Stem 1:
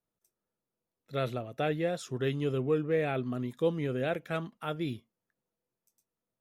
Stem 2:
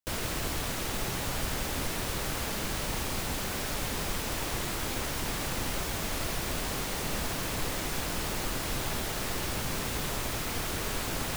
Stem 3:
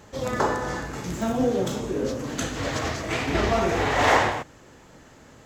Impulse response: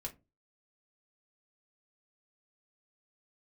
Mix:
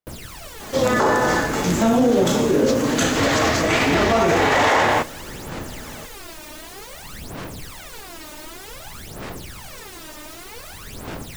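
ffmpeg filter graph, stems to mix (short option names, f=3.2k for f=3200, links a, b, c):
-filter_complex "[0:a]volume=-3dB[a];[1:a]aphaser=in_gain=1:out_gain=1:delay=3.3:decay=0.76:speed=0.54:type=sinusoidal,volume=-7.5dB[b];[2:a]acontrast=78,highpass=83,adelay=600,volume=2.5dB,asplit=2[c][d];[d]volume=-5.5dB[e];[3:a]atrim=start_sample=2205[f];[e][f]afir=irnorm=-1:irlink=0[g];[a][b][c][g]amix=inputs=4:normalize=0,lowshelf=f=60:g=-9,alimiter=limit=-9dB:level=0:latency=1:release=37"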